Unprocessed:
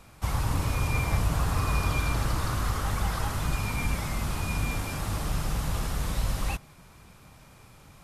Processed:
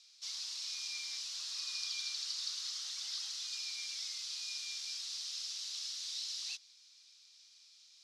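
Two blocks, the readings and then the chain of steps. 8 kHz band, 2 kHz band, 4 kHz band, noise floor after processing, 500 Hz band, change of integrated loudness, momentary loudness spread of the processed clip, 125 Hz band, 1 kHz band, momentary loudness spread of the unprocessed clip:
-2.5 dB, -15.0 dB, +3.5 dB, -62 dBFS, under -40 dB, -9.0 dB, 4 LU, under -40 dB, -31.0 dB, 5 LU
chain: Butterworth band-pass 4.8 kHz, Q 2.1; trim +6 dB

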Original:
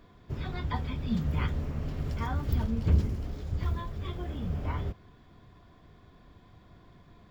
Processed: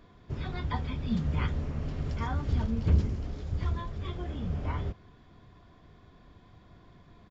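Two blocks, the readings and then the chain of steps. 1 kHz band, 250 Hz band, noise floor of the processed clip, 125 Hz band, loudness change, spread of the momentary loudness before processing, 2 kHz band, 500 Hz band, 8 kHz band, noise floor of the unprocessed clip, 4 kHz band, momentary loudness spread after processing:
0.0 dB, 0.0 dB, -57 dBFS, 0.0 dB, 0.0 dB, 10 LU, 0.0 dB, 0.0 dB, no reading, -57 dBFS, 0.0 dB, 10 LU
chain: resampled via 16 kHz

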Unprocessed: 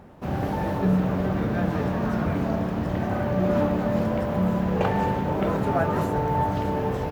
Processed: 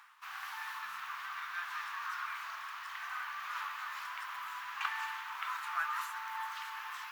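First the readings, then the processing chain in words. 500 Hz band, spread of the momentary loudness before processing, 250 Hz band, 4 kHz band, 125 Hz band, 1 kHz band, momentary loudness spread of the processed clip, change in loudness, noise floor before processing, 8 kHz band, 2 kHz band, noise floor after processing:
under -40 dB, 4 LU, under -40 dB, -1.5 dB, under -40 dB, -10.5 dB, 6 LU, -15.0 dB, -28 dBFS, no reading, -2.0 dB, -46 dBFS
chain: elliptic high-pass 1.1 kHz, stop band 50 dB; reverse; upward compressor, threshold -45 dBFS; reverse; trim -1.5 dB

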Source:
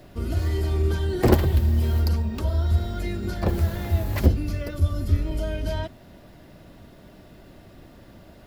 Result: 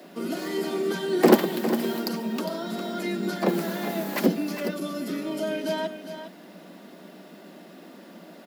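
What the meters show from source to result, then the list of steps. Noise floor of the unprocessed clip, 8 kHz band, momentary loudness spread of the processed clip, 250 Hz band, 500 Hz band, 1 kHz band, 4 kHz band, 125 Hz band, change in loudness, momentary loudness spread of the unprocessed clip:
-49 dBFS, +4.0 dB, 24 LU, +3.5 dB, +4.0 dB, +4.0 dB, +4.0 dB, -16.0 dB, -2.0 dB, 9 LU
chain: steep high-pass 170 Hz 96 dB/octave; delay 406 ms -10 dB; trim +3.5 dB

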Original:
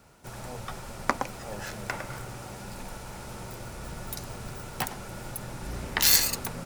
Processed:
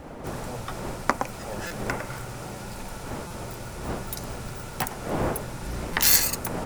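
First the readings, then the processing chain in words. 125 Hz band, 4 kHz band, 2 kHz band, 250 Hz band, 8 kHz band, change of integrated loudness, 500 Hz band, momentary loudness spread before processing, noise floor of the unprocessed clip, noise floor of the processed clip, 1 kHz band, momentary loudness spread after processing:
+4.5 dB, -0.5 dB, +2.5 dB, +6.0 dB, +2.0 dB, +1.0 dB, +6.5 dB, 19 LU, -42 dBFS, -39 dBFS, +4.0 dB, 17 LU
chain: wind noise 610 Hz -40 dBFS; dynamic bell 3.8 kHz, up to -5 dB, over -44 dBFS, Q 1.3; buffer glitch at 1.67/3.27/5.93 s, samples 256, times 5; trim +3 dB

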